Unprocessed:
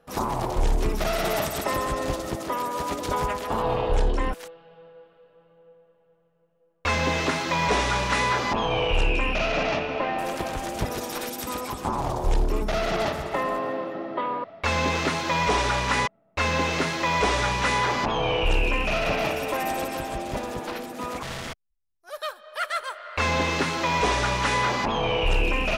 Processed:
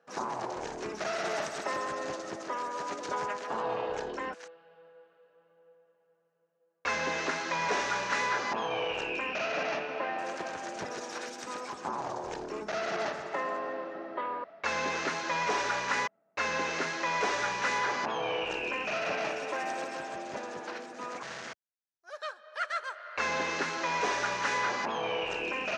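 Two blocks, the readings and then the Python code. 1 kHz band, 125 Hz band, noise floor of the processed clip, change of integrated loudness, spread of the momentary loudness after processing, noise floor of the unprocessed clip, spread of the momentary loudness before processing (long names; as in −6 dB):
−6.5 dB, −20.0 dB, −72 dBFS, −7.0 dB, 10 LU, −64 dBFS, 9 LU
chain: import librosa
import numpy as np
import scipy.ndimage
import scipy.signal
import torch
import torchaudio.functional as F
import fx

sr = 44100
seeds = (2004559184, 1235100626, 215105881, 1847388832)

y = fx.cabinet(x, sr, low_hz=250.0, low_slope=12, high_hz=7000.0, hz=(270.0, 1600.0, 3400.0, 6300.0), db=(-3, 6, -4, 4))
y = y * librosa.db_to_amplitude(-7.0)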